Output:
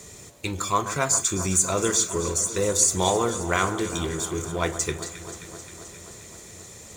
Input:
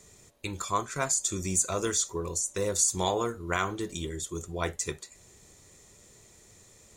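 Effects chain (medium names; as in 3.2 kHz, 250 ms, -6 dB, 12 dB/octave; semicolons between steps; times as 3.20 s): companding laws mixed up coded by mu; high-pass 48 Hz; echo whose repeats swap between lows and highs 132 ms, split 1.6 kHz, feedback 85%, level -11.5 dB; trim +4.5 dB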